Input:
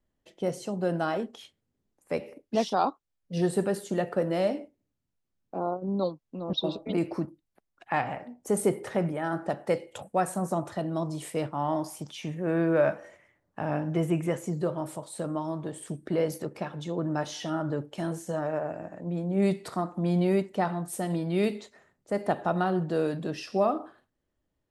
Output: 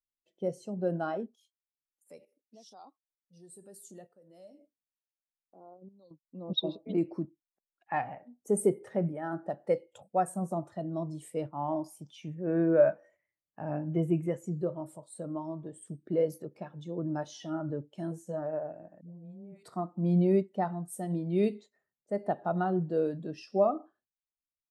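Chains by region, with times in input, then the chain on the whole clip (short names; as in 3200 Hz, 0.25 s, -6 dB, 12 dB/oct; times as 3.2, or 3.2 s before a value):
1.34–6.11 tone controls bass -1 dB, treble +14 dB + compressor 2.5:1, threshold -40 dBFS + tremolo saw up 1.1 Hz, depth 75%
19.01–19.63 bell 310 Hz -6 dB 1.2 oct + compressor 10:1, threshold -36 dBFS + dispersion highs, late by 0.138 s, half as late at 680 Hz
whole clip: high shelf 3800 Hz +6.5 dB; spectral expander 1.5:1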